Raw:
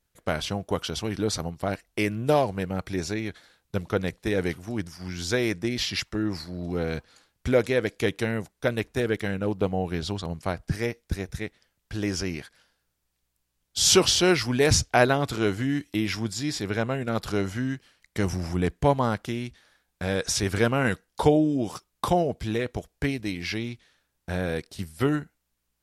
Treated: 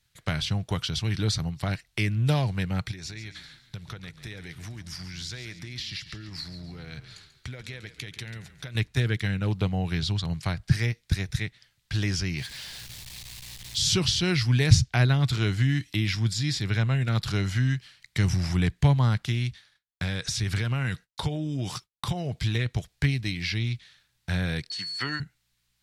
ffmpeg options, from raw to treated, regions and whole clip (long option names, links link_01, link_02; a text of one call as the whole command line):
ffmpeg -i in.wav -filter_complex "[0:a]asettb=1/sr,asplit=3[link_01][link_02][link_03];[link_01]atrim=end=2.914[link_04];[link_02]atrim=start=2.91:end=8.75,asetpts=PTS-STARTPTS,afade=type=in:duration=0.004:curve=qsin,afade=type=out:start_time=5.836:duration=0.004:curve=qsin,acompressor=threshold=-39dB:ratio=8:attack=3.2:release=140:knee=1:detection=peak,asplit=5[link_05][link_06][link_07][link_08][link_09];[link_06]adelay=139,afreqshift=-31,volume=-12.5dB[link_10];[link_07]adelay=278,afreqshift=-62,volume=-19.4dB[link_11];[link_08]adelay=417,afreqshift=-93,volume=-26.4dB[link_12];[link_09]adelay=556,afreqshift=-124,volume=-33.3dB[link_13];[link_05][link_10][link_11][link_12][link_13]amix=inputs=5:normalize=0,atrim=end_sample=257544[link_14];[link_03]atrim=start=8.746[link_15];[link_04][link_14]acrossfade=duration=0.004:curve1=hsin:curve2=qsin[link_16];[link_16][link_15]acrossfade=duration=0.004:curve1=qsin:curve2=hsin,asettb=1/sr,asplit=3[link_17][link_18][link_19];[link_17]atrim=end=12.374[link_20];[link_18]atrim=start=12.37:end=13.81,asetpts=PTS-STARTPTS,afade=type=in:duration=0.004:curve=qsin,afade=type=out:start_time=1.436:duration=0.004:curve=qsin,aeval=exprs='val(0)+0.5*0.00944*sgn(val(0))':channel_layout=same,equalizer=frequency=1400:width=3:gain=-8[link_21];[link_19]atrim=start=13.806[link_22];[link_20][link_21]acrossfade=duration=0.004:curve1=hsin:curve2=qsin[link_23];[link_23][link_22]acrossfade=duration=0.004:curve1=qsin:curve2=hsin,asettb=1/sr,asplit=3[link_24][link_25][link_26];[link_24]atrim=end=19.464[link_27];[link_25]atrim=start=19.46:end=22.55,asetpts=PTS-STARTPTS,afade=type=in:duration=0.004:curve=qsin,afade=type=out:start_time=3.086:duration=0.004:curve=qsin,agate=range=-33dB:threshold=-55dB:ratio=3:release=100:detection=peak,acompressor=threshold=-26dB:ratio=4:attack=3.2:release=140:knee=1:detection=peak[link_28];[link_26]atrim=start=22.546[link_29];[link_27][link_28]acrossfade=duration=0.004:curve1=hsin:curve2=qsin[link_30];[link_30][link_29]acrossfade=duration=0.004:curve1=qsin:curve2=hsin,asettb=1/sr,asplit=3[link_31][link_32][link_33];[link_31]atrim=end=24.704[link_34];[link_32]atrim=start=24.7:end=25.2,asetpts=PTS-STARTPTS,afade=type=in:duration=0.004:curve=qsin,afade=type=out:start_time=0.496:duration=0.004:curve=qsin,aeval=exprs='val(0)+0.0126*sin(2*PI*4400*n/s)':channel_layout=same,highpass=370,equalizer=frequency=400:width_type=q:width=4:gain=-6,equalizer=frequency=640:width_type=q:width=4:gain=-4,equalizer=frequency=990:width_type=q:width=4:gain=5,equalizer=frequency=1700:width_type=q:width=4:gain=8,equalizer=frequency=3800:width_type=q:width=4:gain=-5,lowpass=frequency=8600:width=0.5412,lowpass=frequency=8600:width=1.3066[link_35];[link_33]atrim=start=25.196[link_36];[link_34][link_35]acrossfade=duration=0.004:curve1=hsin:curve2=qsin[link_37];[link_37][link_36]acrossfade=duration=0.004:curve1=qsin:curve2=hsin,equalizer=frequency=125:width_type=o:width=1:gain=11,equalizer=frequency=250:width_type=o:width=1:gain=-5,equalizer=frequency=500:width_type=o:width=1:gain=-6,equalizer=frequency=2000:width_type=o:width=1:gain=6,equalizer=frequency=4000:width_type=o:width=1:gain=10,equalizer=frequency=8000:width_type=o:width=1:gain=3,acrossover=split=330[link_38][link_39];[link_39]acompressor=threshold=-34dB:ratio=2[link_40];[link_38][link_40]amix=inputs=2:normalize=0" out.wav